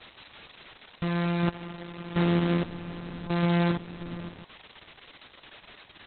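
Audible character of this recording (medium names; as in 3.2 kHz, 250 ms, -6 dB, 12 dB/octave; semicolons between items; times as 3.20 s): a buzz of ramps at a fixed pitch in blocks of 256 samples; random-step tremolo; a quantiser's noise floor 8-bit, dither triangular; Opus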